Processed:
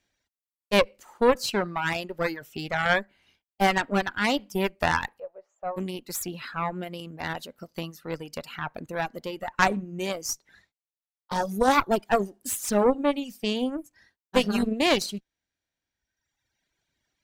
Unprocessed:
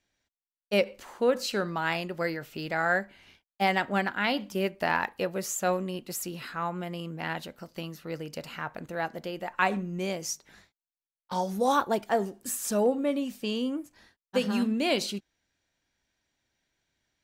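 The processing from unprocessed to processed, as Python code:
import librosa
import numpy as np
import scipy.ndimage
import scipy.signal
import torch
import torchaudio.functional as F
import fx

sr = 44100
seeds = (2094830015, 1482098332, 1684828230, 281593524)

y = fx.ladder_bandpass(x, sr, hz=770.0, resonance_pct=50, at=(5.18, 5.76), fade=0.02)
y = fx.cheby_harmonics(y, sr, harmonics=(3, 4, 8), levels_db=(-20, -17, -30), full_scale_db=-9.0)
y = fx.dereverb_blind(y, sr, rt60_s=1.4)
y = y * librosa.db_to_amplitude(6.0)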